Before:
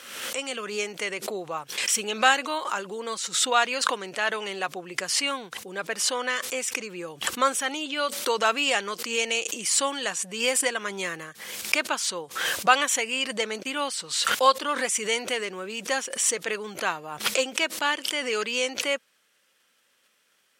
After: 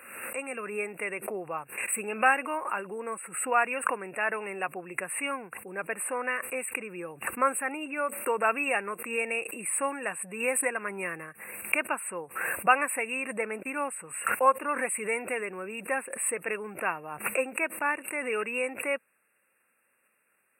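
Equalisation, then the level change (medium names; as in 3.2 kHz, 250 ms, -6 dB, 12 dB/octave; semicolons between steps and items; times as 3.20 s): brick-wall FIR band-stop 2.8–7.9 kHz; -2.5 dB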